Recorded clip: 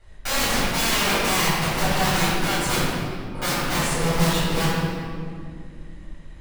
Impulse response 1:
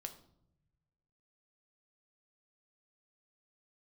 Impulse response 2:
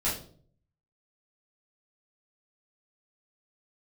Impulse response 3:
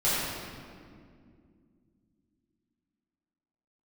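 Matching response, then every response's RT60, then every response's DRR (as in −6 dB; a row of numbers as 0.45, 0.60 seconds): 3; non-exponential decay, 0.50 s, 2.3 s; 5.5, −9.0, −12.0 decibels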